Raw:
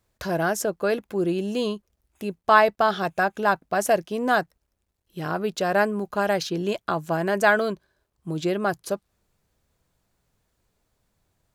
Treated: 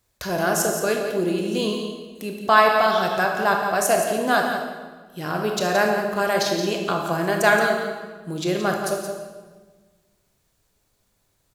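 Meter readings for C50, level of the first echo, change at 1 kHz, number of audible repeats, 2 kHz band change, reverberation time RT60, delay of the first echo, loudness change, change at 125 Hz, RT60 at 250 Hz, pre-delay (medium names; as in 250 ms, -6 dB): 2.5 dB, -8.5 dB, +2.5 dB, 1, +3.0 dB, 1.4 s, 173 ms, +2.5 dB, +1.5 dB, 1.8 s, 22 ms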